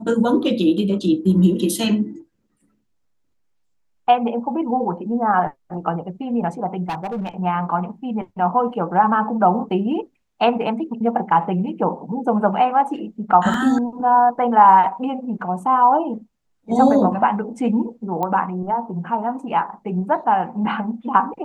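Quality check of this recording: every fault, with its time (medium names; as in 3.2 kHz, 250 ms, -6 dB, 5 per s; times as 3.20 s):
6.89–7.29 s: clipped -22 dBFS
13.54 s: dropout 2 ms
18.23 s: pop -12 dBFS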